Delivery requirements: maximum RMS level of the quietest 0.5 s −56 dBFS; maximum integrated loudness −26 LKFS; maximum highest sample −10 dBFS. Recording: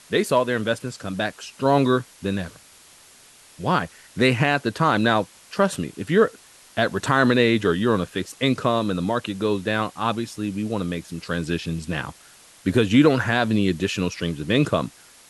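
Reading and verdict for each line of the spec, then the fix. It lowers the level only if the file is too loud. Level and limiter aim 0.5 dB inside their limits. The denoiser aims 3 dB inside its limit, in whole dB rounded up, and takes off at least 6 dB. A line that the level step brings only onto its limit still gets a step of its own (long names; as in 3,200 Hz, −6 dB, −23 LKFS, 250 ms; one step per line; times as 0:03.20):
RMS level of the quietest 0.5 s −50 dBFS: out of spec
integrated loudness −22.5 LKFS: out of spec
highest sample −4.0 dBFS: out of spec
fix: broadband denoise 6 dB, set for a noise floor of −50 dBFS
level −4 dB
brickwall limiter −10.5 dBFS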